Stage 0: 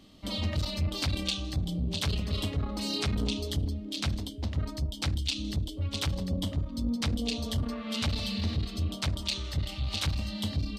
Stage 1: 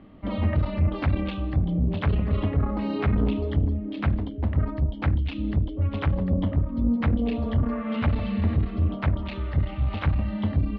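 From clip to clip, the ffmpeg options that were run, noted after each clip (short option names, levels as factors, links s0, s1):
-af "lowpass=f=2000:w=0.5412,lowpass=f=2000:w=1.3066,volume=2.37"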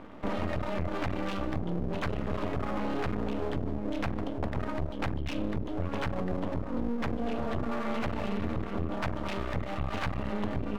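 -filter_complex "[0:a]asplit=2[s0][s1];[s1]highpass=f=720:p=1,volume=11.2,asoftclip=type=tanh:threshold=0.282[s2];[s0][s2]amix=inputs=2:normalize=0,lowpass=f=1100:p=1,volume=0.501,aeval=exprs='max(val(0),0)':c=same,acompressor=threshold=0.0501:ratio=6"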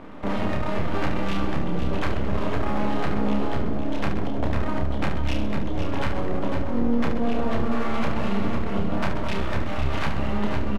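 -filter_complex "[0:a]asplit=2[s0][s1];[s1]aecho=0:1:504:0.422[s2];[s0][s2]amix=inputs=2:normalize=0,aresample=32000,aresample=44100,asplit=2[s3][s4];[s4]aecho=0:1:30|72|130.8|213.1|328.4:0.631|0.398|0.251|0.158|0.1[s5];[s3][s5]amix=inputs=2:normalize=0,volume=1.58"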